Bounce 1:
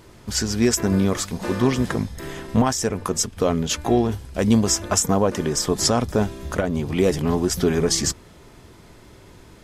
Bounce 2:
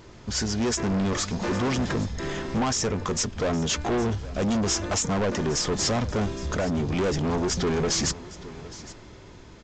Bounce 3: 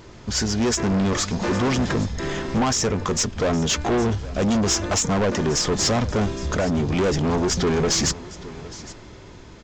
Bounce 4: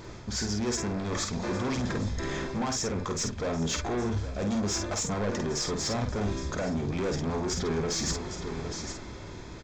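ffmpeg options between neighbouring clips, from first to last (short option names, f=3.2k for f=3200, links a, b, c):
-af "dynaudnorm=f=100:g=17:m=4dB,aresample=16000,asoftclip=type=tanh:threshold=-22dB,aresample=44100,aecho=1:1:813:0.126"
-af "aeval=exprs='0.178*(cos(1*acos(clip(val(0)/0.178,-1,1)))-cos(1*PI/2))+0.0112*(cos(3*acos(clip(val(0)/0.178,-1,1)))-cos(3*PI/2))+0.00112*(cos(8*acos(clip(val(0)/0.178,-1,1)))-cos(8*PI/2))':c=same,volume=5.5dB"
-filter_complex "[0:a]bandreject=f=2.9k:w=9.1,areverse,acompressor=threshold=-30dB:ratio=6,areverse,asplit=2[a][b];[b]adelay=49,volume=-5.5dB[c];[a][c]amix=inputs=2:normalize=0"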